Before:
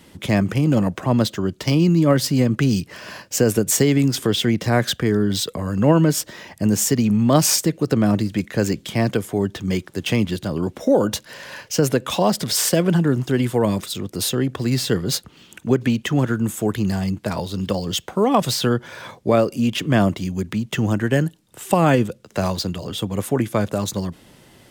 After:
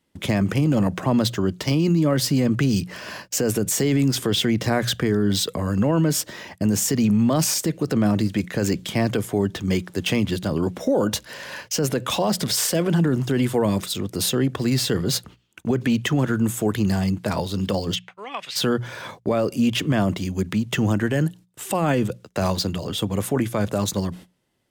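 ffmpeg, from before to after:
ffmpeg -i in.wav -filter_complex "[0:a]asplit=3[link_01][link_02][link_03];[link_01]afade=type=out:start_time=17.94:duration=0.02[link_04];[link_02]bandpass=frequency=2400:width_type=q:width=2.3,afade=type=in:start_time=17.94:duration=0.02,afade=type=out:start_time=18.55:duration=0.02[link_05];[link_03]afade=type=in:start_time=18.55:duration=0.02[link_06];[link_04][link_05][link_06]amix=inputs=3:normalize=0,agate=range=-24dB:threshold=-41dB:ratio=16:detection=peak,bandreject=frequency=60:width_type=h:width=6,bandreject=frequency=120:width_type=h:width=6,bandreject=frequency=180:width_type=h:width=6,alimiter=limit=-13dB:level=0:latency=1:release=16,volume=1dB" out.wav

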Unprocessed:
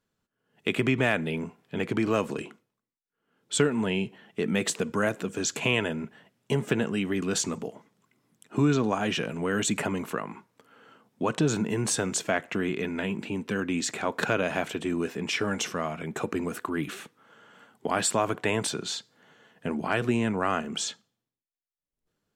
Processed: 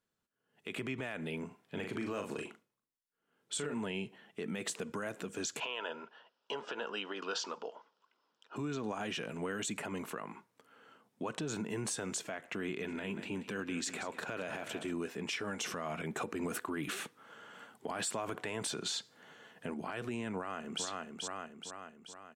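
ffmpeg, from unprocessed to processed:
ffmpeg -i in.wav -filter_complex "[0:a]asettb=1/sr,asplit=3[link_01][link_02][link_03];[link_01]atrim=end=1.474[link_04];[link_02]atrim=start=1.47:end=3.74,asetpts=PTS-STARTPTS,afade=type=in:duration=0.004:curve=qsin,afade=type=out:start_time=2.266:duration=0.004:curve=qsin,asplit=2[link_05][link_06];[link_06]adelay=40,volume=-6.5dB[link_07];[link_05][link_07]amix=inputs=2:normalize=0,atrim=end_sample=100107[link_08];[link_03]atrim=start=3.736[link_09];[link_04][link_08]acrossfade=duration=0.004:curve1=hsin:curve2=qsin[link_10];[link_10][link_09]acrossfade=duration=0.004:curve1=qsin:curve2=hsin,asettb=1/sr,asplit=3[link_11][link_12][link_13];[link_11]atrim=end=5.604[link_14];[link_12]atrim=start=5.6:end=8.56,asetpts=PTS-STARTPTS,afade=type=in:duration=0.004:curve=qsin,afade=type=out:start_time=2.956:duration=0.004:curve=qsin,highpass=480,equalizer=frequency=500:width_type=q:width=4:gain=5,equalizer=frequency=950:width_type=q:width=4:gain=8,equalizer=frequency=1400:width_type=q:width=4:gain=7,equalizer=frequency=2100:width_type=q:width=4:gain=-9,equalizer=frequency=3000:width_type=q:width=4:gain=6,equalizer=frequency=5100:width_type=q:width=4:gain=7,lowpass=frequency=5200:width=0.5412,lowpass=frequency=5200:width=1.3066[link_15];[link_13]atrim=start=8.556[link_16];[link_14][link_15]acrossfade=duration=0.004:curve1=hsin:curve2=qsin[link_17];[link_17][link_16]acrossfade=duration=0.004:curve1=qsin:curve2=hsin,asplit=3[link_18][link_19][link_20];[link_18]afade=type=out:start_time=12.81:duration=0.02[link_21];[link_19]aecho=1:1:184|368|552|736:0.211|0.0867|0.0355|0.0146,afade=type=in:start_time=12.81:duration=0.02,afade=type=out:start_time=14.91:duration=0.02[link_22];[link_20]afade=type=in:start_time=14.91:duration=0.02[link_23];[link_21][link_22][link_23]amix=inputs=3:normalize=0,asettb=1/sr,asplit=3[link_24][link_25][link_26];[link_24]atrim=end=15.624[link_27];[link_25]atrim=start=15.62:end=19.74,asetpts=PTS-STARTPTS,afade=type=in:duration=0.004:curve=qsin,afade=type=out:start_time=4.116:duration=0.004:curve=qsin,acontrast=78[link_28];[link_26]atrim=start=19.736[link_29];[link_27][link_28]acrossfade=duration=0.004:curve1=hsin:curve2=qsin[link_30];[link_30][link_29]acrossfade=duration=0.004:curve1=qsin:curve2=hsin,asplit=2[link_31][link_32];[link_32]afade=type=in:start_time=20.36:duration=0.01,afade=type=out:start_time=20.84:duration=0.01,aecho=0:1:430|860|1290|1720|2150|2580|3010:0.530884|0.291986|0.160593|0.0883259|0.0485792|0.0267186|0.0146952[link_33];[link_31][link_33]amix=inputs=2:normalize=0,equalizer=frequency=9400:width_type=o:width=0.26:gain=3,alimiter=limit=-22dB:level=0:latency=1:release=99,lowshelf=frequency=250:gain=-5.5,volume=-5dB" out.wav

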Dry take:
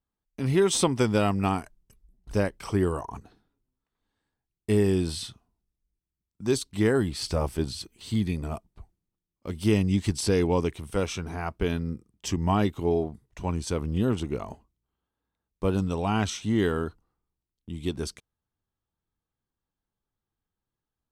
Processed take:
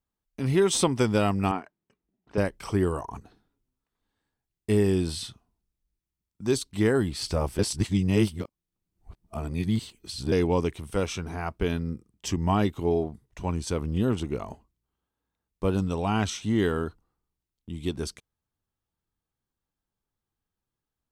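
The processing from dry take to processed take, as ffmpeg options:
ffmpeg -i in.wav -filter_complex "[0:a]asettb=1/sr,asplit=3[link_01][link_02][link_03];[link_01]atrim=end=1.514[link_04];[link_02]atrim=start=1.51:end=2.38,asetpts=PTS-STARTPTS,afade=type=in:duration=0.004:curve=qsin,afade=type=out:start_time=0.866:duration=0.004:curve=qsin,highpass=240,lowpass=2600[link_05];[link_03]atrim=start=2.376[link_06];[link_04][link_05]acrossfade=duration=0.004:curve1=hsin:curve2=qsin[link_07];[link_07][link_06]acrossfade=duration=0.004:curve1=qsin:curve2=hsin,asplit=3[link_08][link_09][link_10];[link_08]atrim=end=7.592[link_11];[link_09]atrim=start=7.588:end=10.322,asetpts=PTS-STARTPTS,areverse[link_12];[link_10]atrim=start=10.318[link_13];[link_11][link_12]acrossfade=duration=0.004:curve1=hsin:curve2=hsin[link_14];[link_14][link_13]acrossfade=duration=0.004:curve1=hsin:curve2=hsin" out.wav

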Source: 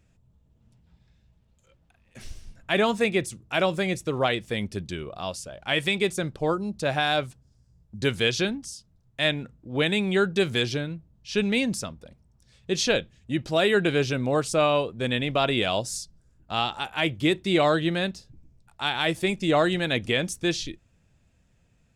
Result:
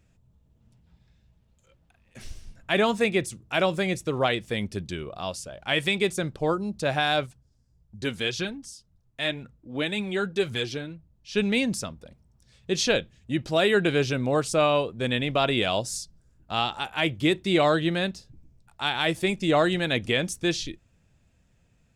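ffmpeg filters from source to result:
ffmpeg -i in.wav -filter_complex "[0:a]asplit=3[link_01][link_02][link_03];[link_01]afade=type=out:start_time=7.25:duration=0.02[link_04];[link_02]flanger=delay=0.6:depth=4:regen=44:speed=1.9:shape=triangular,afade=type=in:start_time=7.25:duration=0.02,afade=type=out:start_time=11.35:duration=0.02[link_05];[link_03]afade=type=in:start_time=11.35:duration=0.02[link_06];[link_04][link_05][link_06]amix=inputs=3:normalize=0" out.wav

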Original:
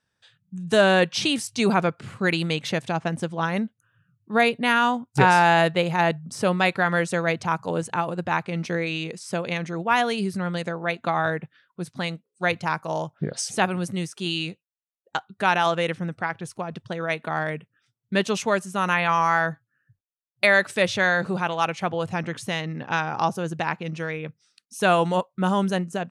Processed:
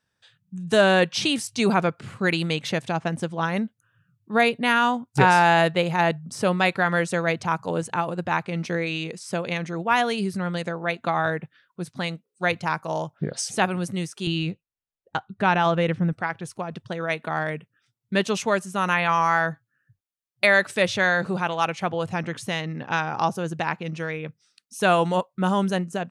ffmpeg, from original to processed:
ffmpeg -i in.wav -filter_complex "[0:a]asettb=1/sr,asplit=3[link_01][link_02][link_03];[link_01]atrim=end=14.274[link_04];[link_02]atrim=start=14.27:end=16.13,asetpts=PTS-STARTPTS,afade=type=in:duration=0.004:curve=qsin,afade=type=out:start_time=1.856:duration=0.004:curve=qsin,aemphasis=mode=reproduction:type=bsi[link_05];[link_03]atrim=start=16.126[link_06];[link_04][link_05]acrossfade=duration=0.004:curve1=hsin:curve2=qsin[link_07];[link_07][link_06]acrossfade=duration=0.004:curve1=qsin:curve2=hsin" out.wav

